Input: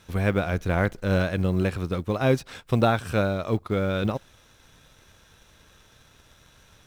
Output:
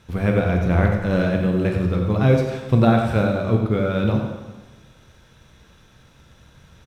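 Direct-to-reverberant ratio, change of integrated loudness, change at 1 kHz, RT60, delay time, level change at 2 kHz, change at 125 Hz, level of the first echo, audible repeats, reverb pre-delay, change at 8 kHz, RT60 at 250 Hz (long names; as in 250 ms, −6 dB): 1.0 dB, +5.5 dB, +3.0 dB, 1.2 s, 93 ms, +2.0 dB, +7.0 dB, −8.0 dB, 1, 7 ms, can't be measured, 1.2 s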